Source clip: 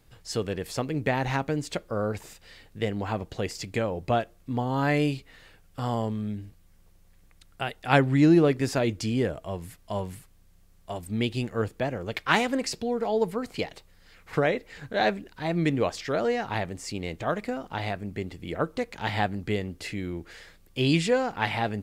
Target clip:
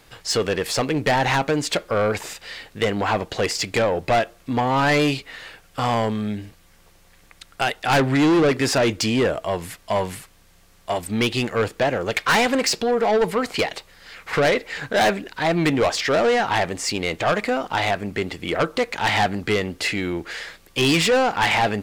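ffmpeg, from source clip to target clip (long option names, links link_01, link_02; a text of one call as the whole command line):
ffmpeg -i in.wav -filter_complex "[0:a]asplit=2[link_01][link_02];[link_02]highpass=frequency=720:poles=1,volume=14dB,asoftclip=type=tanh:threshold=-5dB[link_03];[link_01][link_03]amix=inputs=2:normalize=0,lowpass=frequency=5700:poles=1,volume=-6dB,asoftclip=type=tanh:threshold=-21dB,volume=7dB" out.wav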